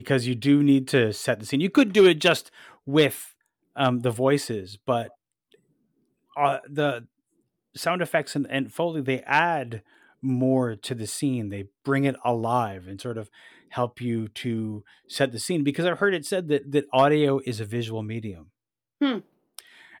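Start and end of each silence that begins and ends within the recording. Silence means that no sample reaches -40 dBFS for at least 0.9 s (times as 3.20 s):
5.07–6.36 s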